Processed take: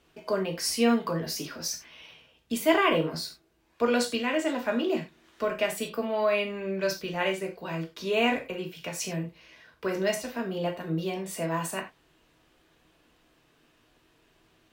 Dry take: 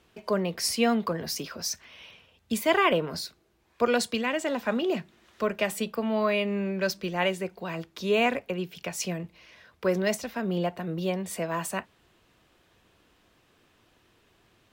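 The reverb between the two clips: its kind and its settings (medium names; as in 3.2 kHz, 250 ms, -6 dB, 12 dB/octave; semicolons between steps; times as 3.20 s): gated-style reverb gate 120 ms falling, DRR 1.5 dB; trim -3 dB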